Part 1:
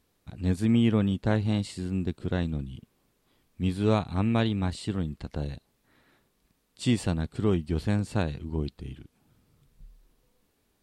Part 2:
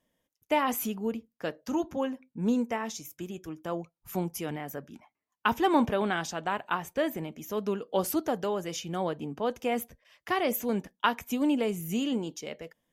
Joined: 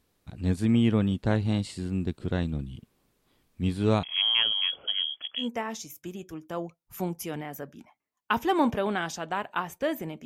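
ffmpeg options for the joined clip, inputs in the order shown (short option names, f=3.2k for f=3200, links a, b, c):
-filter_complex "[0:a]asettb=1/sr,asplit=3[a][b][c];[a]atrim=end=4.034[d];[b]atrim=start=4.03:end=5.49,asetpts=PTS-STARTPTS,afade=t=in:d=0.004:c=qsin,afade=t=out:st=1.456:d=0.004:c=qsin,lowpass=f=2.9k:t=q:w=0.5098,lowpass=f=2.9k:t=q:w=0.6013,lowpass=f=2.9k:t=q:w=0.9,lowpass=f=2.9k:t=q:w=2.563,afreqshift=-3400[e];[c]atrim=start=5.486[f];[d][e]acrossfade=d=0.004:c1=hsin:c2=qsin[g];[g][f]acrossfade=d=0.004:c1=qsin:c2=hsin,apad=whole_dur=10.25,atrim=end=10.25,atrim=end=5.49,asetpts=PTS-STARTPTS[h];[1:a]atrim=start=2.52:end=7.4,asetpts=PTS-STARTPTS[i];[h][i]acrossfade=d=0.12:c1=tri:c2=tri"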